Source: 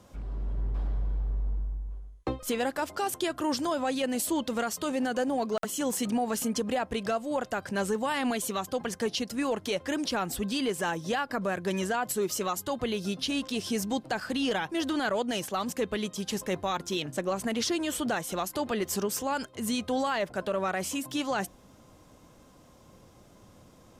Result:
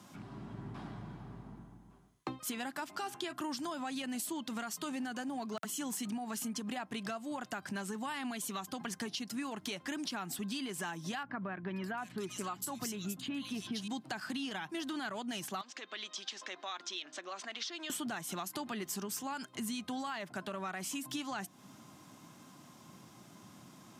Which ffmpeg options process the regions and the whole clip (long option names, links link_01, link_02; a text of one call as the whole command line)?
ffmpeg -i in.wav -filter_complex "[0:a]asettb=1/sr,asplit=3[link_01][link_02][link_03];[link_01]atrim=end=2.854[link_04];[link_02]atrim=start=2.85:end=3.33,asetpts=PTS-STARTPTS,afade=type=in:duration=0.004:curve=qsin,afade=type=out:start_time=0.476:duration=0.004:curve=qsin,acrossover=split=5400[link_05][link_06];[link_06]acompressor=threshold=-46dB:ratio=4:attack=1:release=60[link_07];[link_05][link_07]amix=inputs=2:normalize=0,bandreject=frequency=81.19:width_type=h:width=4,bandreject=frequency=162.38:width_type=h:width=4,bandreject=frequency=243.57:width_type=h:width=4,bandreject=frequency=324.76:width_type=h:width=4,bandreject=frequency=405.95:width_type=h:width=4,bandreject=frequency=487.14:width_type=h:width=4,bandreject=frequency=568.33:width_type=h:width=4,bandreject=frequency=649.52:width_type=h:width=4,bandreject=frequency=730.71:width_type=h:width=4,bandreject=frequency=811.9:width_type=h:width=4,bandreject=frequency=893.09:width_type=h:width=4,bandreject=frequency=974.28:width_type=h:width=4,bandreject=frequency=1055.47:width_type=h:width=4,bandreject=frequency=1136.66:width_type=h:width=4,bandreject=frequency=1217.85:width_type=h:width=4,bandreject=frequency=1299.04:width_type=h:width=4,bandreject=frequency=1380.23:width_type=h:width=4,bandreject=frequency=1461.42:width_type=h:width=4,bandreject=frequency=1542.61:width_type=h:width=4,bandreject=frequency=1623.8:width_type=h:width=4,bandreject=frequency=1704.99:width_type=h:width=4,bandreject=frequency=1786.18:width_type=h:width=4,bandreject=frequency=1867.37:width_type=h:width=4,bandreject=frequency=1948.56:width_type=h:width=4,bandreject=frequency=2029.75:width_type=h:width=4,bandreject=frequency=2110.94:width_type=h:width=4,bandreject=frequency=2192.13:width_type=h:width=4,bandreject=frequency=2273.32:width_type=h:width=4,bandreject=frequency=2354.51:width_type=h:width=4,bandreject=frequency=2435.7:width_type=h:width=4,bandreject=frequency=2516.89:width_type=h:width=4,bandreject=frequency=2598.08:width_type=h:width=4,bandreject=frequency=2679.27:width_type=h:width=4,bandreject=frequency=2760.46:width_type=h:width=4,bandreject=frequency=2841.65:width_type=h:width=4[link_08];[link_03]atrim=start=3.326[link_09];[link_04][link_08]acrossfade=duration=0.004:curve1=hsin:curve2=qsin[link_10];[link_10][link_09]acrossfade=duration=0.004:curve1=qsin:curve2=hsin,asettb=1/sr,asplit=3[link_11][link_12][link_13];[link_11]atrim=end=11.234[link_14];[link_12]atrim=start=11.23:end=13.88,asetpts=PTS-STARTPTS,afade=type=in:duration=0.004:curve=qsin,afade=type=out:start_time=2.646:duration=0.004:curve=qsin,aeval=exprs='val(0)+0.00562*(sin(2*PI*60*n/s)+sin(2*PI*2*60*n/s)/2+sin(2*PI*3*60*n/s)/3+sin(2*PI*4*60*n/s)/4+sin(2*PI*5*60*n/s)/5)':channel_layout=same,acrossover=split=2800[link_15][link_16];[link_16]adelay=530[link_17];[link_15][link_17]amix=inputs=2:normalize=0,atrim=end_sample=116865[link_18];[link_13]atrim=start=13.876[link_19];[link_14][link_18]acrossfade=duration=0.004:curve1=hsin:curve2=qsin[link_20];[link_20][link_19]acrossfade=duration=0.004:curve1=qsin:curve2=hsin,asettb=1/sr,asplit=3[link_21][link_22][link_23];[link_21]atrim=end=15.614[link_24];[link_22]atrim=start=15.61:end=17.9,asetpts=PTS-STARTPTS,afade=type=in:duration=0.004:curve=qsin,afade=type=out:start_time=2.286:duration=0.004:curve=qsin,acompressor=threshold=-36dB:ratio=3:attack=3.2:release=140:knee=1:detection=peak,highpass=frequency=400:width=0.5412,highpass=frequency=400:width=1.3066,equalizer=frequency=420:width_type=q:width=4:gain=-7,equalizer=frequency=870:width_type=q:width=4:gain=-6,equalizer=frequency=3600:width_type=q:width=4:gain=4,lowpass=frequency=6000:width=0.5412,lowpass=frequency=6000:width=1.3066[link_25];[link_23]atrim=start=17.896[link_26];[link_24][link_25]acrossfade=duration=0.004:curve1=hsin:curve2=qsin[link_27];[link_27][link_26]acrossfade=duration=0.004:curve1=qsin:curve2=hsin,highpass=frequency=130:width=0.5412,highpass=frequency=130:width=1.3066,equalizer=frequency=500:width_type=o:width=0.54:gain=-15,acompressor=threshold=-40dB:ratio=6,volume=3dB" out.wav